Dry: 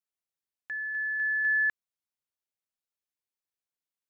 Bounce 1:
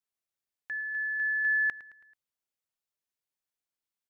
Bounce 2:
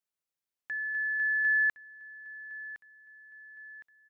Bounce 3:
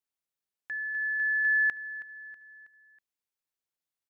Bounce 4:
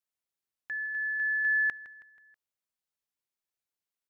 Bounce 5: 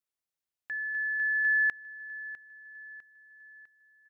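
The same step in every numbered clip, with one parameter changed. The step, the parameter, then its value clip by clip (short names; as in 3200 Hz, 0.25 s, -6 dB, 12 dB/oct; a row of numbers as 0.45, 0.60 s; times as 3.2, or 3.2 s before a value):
feedback echo, time: 0.109, 1.062, 0.322, 0.161, 0.652 s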